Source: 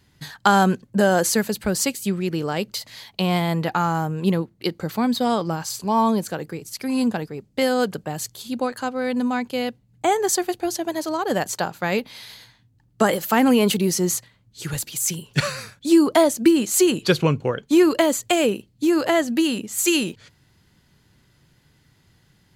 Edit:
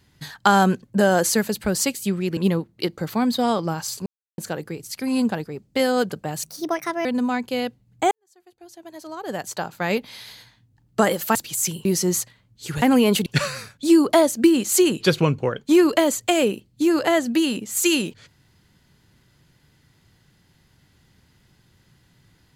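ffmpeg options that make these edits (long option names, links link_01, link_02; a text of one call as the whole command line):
ffmpeg -i in.wav -filter_complex "[0:a]asplit=11[link_01][link_02][link_03][link_04][link_05][link_06][link_07][link_08][link_09][link_10][link_11];[link_01]atrim=end=2.372[link_12];[link_02]atrim=start=4.188:end=5.88,asetpts=PTS-STARTPTS,afade=type=out:start_time=1.688:duration=0.004:curve=hsin[link_13];[link_03]atrim=start=5.88:end=6.2,asetpts=PTS-STARTPTS,volume=0[link_14];[link_04]atrim=start=6.2:end=8.254,asetpts=PTS-STARTPTS,afade=type=in:duration=0.004:curve=hsin[link_15];[link_05]atrim=start=8.25:end=9.07,asetpts=PTS-STARTPTS,asetrate=58212,aresample=44100,atrim=end_sample=27395,asetpts=PTS-STARTPTS[link_16];[link_06]atrim=start=9.066:end=10.13,asetpts=PTS-STARTPTS,afade=type=out:start_time=1.06:duration=0.004:curve=hsin[link_17];[link_07]atrim=start=10.13:end=13.372,asetpts=PTS-STARTPTS,afade=type=in:duration=1.82:curve=qua[link_18];[link_08]atrim=start=14.778:end=15.282[link_19];[link_09]atrim=start=13.808:end=14.782[link_20];[link_10]atrim=start=13.368:end=13.812[link_21];[link_11]atrim=start=15.278[link_22];[link_13][link_14][link_15]concat=n=3:v=0:a=1[link_23];[link_12][link_23]acrossfade=duration=0.004:curve1=hsin:curve2=hsin[link_24];[link_24][link_16]acrossfade=duration=0.004:curve1=hsin:curve2=hsin[link_25];[link_17][link_18]concat=n=2:v=0:a=1[link_26];[link_25][link_26]acrossfade=duration=0.004:curve1=hsin:curve2=hsin[link_27];[link_27][link_19]acrossfade=duration=0.004:curve1=hsin:curve2=hsin[link_28];[link_28][link_20]acrossfade=duration=0.004:curve1=hsin:curve2=hsin[link_29];[link_29][link_21]acrossfade=duration=0.004:curve1=hsin:curve2=hsin[link_30];[link_30][link_22]acrossfade=duration=0.004:curve1=hsin:curve2=hsin" out.wav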